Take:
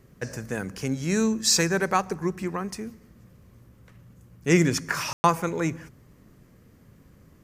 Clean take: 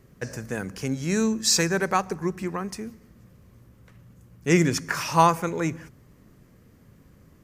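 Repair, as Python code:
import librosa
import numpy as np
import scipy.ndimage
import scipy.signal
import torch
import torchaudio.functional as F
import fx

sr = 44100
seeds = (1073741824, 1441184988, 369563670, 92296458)

y = fx.fix_ambience(x, sr, seeds[0], print_start_s=6.35, print_end_s=6.85, start_s=5.13, end_s=5.24)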